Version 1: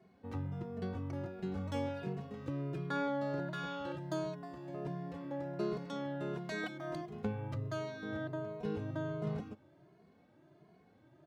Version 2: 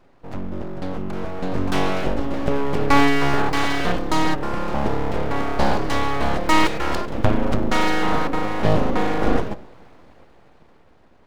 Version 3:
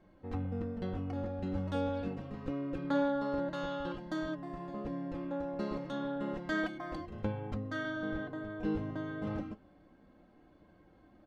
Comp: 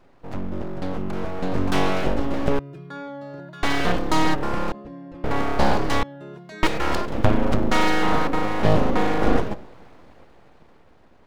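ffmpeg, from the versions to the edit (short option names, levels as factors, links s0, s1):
-filter_complex "[0:a]asplit=2[s0][s1];[1:a]asplit=4[s2][s3][s4][s5];[s2]atrim=end=2.592[s6];[s0]atrim=start=2.588:end=3.632[s7];[s3]atrim=start=3.628:end=4.722[s8];[2:a]atrim=start=4.718:end=5.242[s9];[s4]atrim=start=5.238:end=6.032[s10];[s1]atrim=start=6.028:end=6.632[s11];[s5]atrim=start=6.628[s12];[s6][s7]acrossfade=d=0.004:c1=hsin:c2=hsin[s13];[s13][s8]acrossfade=d=0.004:c1=hsin:c2=hsin[s14];[s14][s9]acrossfade=d=0.004:c1=hsin:c2=hsin[s15];[s15][s10]acrossfade=d=0.004:c1=hsin:c2=hsin[s16];[s16][s11]acrossfade=d=0.004:c1=hsin:c2=hsin[s17];[s17][s12]acrossfade=d=0.004:c1=hsin:c2=hsin"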